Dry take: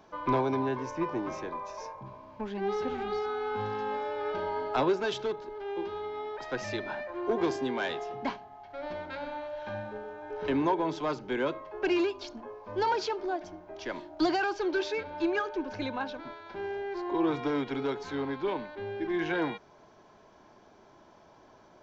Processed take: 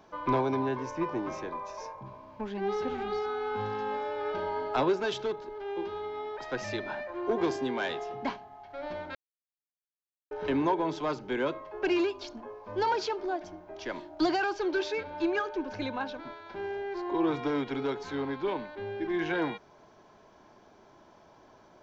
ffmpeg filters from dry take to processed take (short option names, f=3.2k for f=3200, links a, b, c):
-filter_complex "[0:a]asplit=3[a][b][c];[a]atrim=end=9.15,asetpts=PTS-STARTPTS,afade=t=out:st=9.146:d=0.004:c=hsin[d];[b]atrim=start=9.15:end=10.31,asetpts=PTS-STARTPTS,volume=0[e];[c]atrim=start=10.31,asetpts=PTS-STARTPTS,afade=t=in:d=0.004:c=hsin[f];[d][e][f]concat=n=3:v=0:a=1"